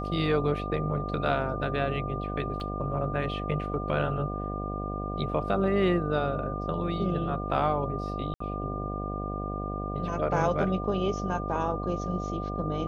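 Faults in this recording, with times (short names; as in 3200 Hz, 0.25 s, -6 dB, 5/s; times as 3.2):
buzz 50 Hz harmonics 15 -34 dBFS
tone 1200 Hz -36 dBFS
2.6 gap 3.4 ms
8.34–8.4 gap 64 ms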